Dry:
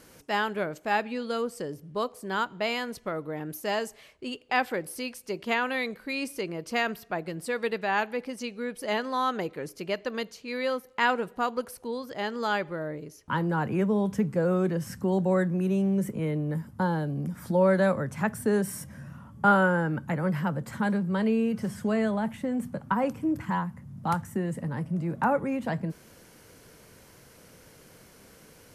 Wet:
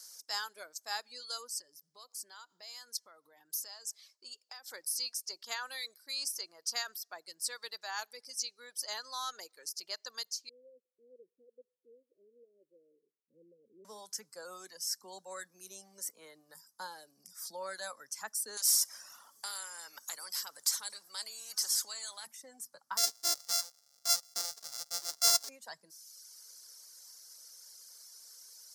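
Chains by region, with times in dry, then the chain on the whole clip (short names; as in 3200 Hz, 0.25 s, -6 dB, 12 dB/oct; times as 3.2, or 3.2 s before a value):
1.59–4.72 low shelf 110 Hz +10 dB + compressor 12:1, threshold -35 dBFS
10.49–13.85 steep low-pass 510 Hz 96 dB/oct + low shelf 270 Hz -8 dB
18.57–22.27 compressor 2:1, threshold -31 dBFS + spectral compressor 2:1
22.97–25.49 sample sorter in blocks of 64 samples + three-band expander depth 40%
whole clip: HPF 1100 Hz 12 dB/oct; resonant high shelf 3700 Hz +12.5 dB, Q 3; reverb removal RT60 1.1 s; gain -7.5 dB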